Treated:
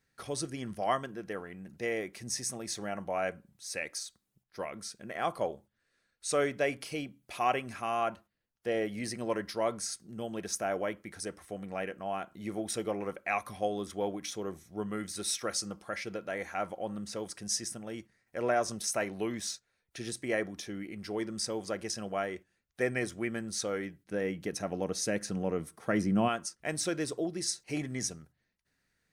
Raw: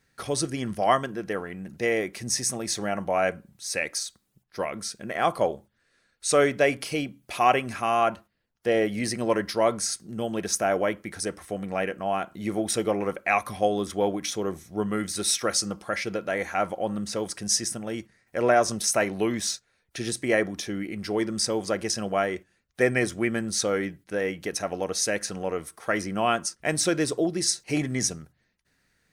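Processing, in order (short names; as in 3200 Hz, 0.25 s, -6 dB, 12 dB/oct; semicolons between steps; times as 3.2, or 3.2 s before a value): 24.05–26.27 bell 170 Hz +7 dB -> +14.5 dB 2.4 oct; gain -8.5 dB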